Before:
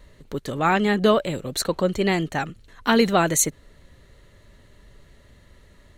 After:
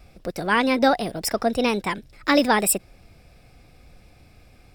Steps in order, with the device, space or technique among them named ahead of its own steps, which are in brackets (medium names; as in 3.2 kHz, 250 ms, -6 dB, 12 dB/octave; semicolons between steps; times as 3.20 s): nightcore (tape speed +26%)